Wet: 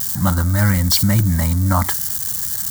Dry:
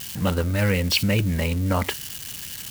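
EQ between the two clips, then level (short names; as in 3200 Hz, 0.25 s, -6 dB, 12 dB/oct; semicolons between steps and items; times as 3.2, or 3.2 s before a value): bell 7500 Hz +3.5 dB 0.58 oct; high shelf 12000 Hz +8 dB; fixed phaser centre 1100 Hz, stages 4; +8.0 dB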